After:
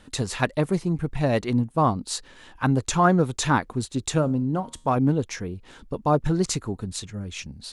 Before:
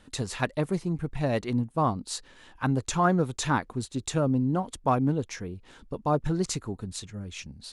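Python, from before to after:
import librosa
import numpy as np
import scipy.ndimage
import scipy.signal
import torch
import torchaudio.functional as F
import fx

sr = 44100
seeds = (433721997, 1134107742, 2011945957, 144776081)

y = fx.comb_fb(x, sr, f0_hz=78.0, decay_s=0.41, harmonics='all', damping=0.0, mix_pct=40, at=(4.21, 4.95), fade=0.02)
y = y * librosa.db_to_amplitude(4.5)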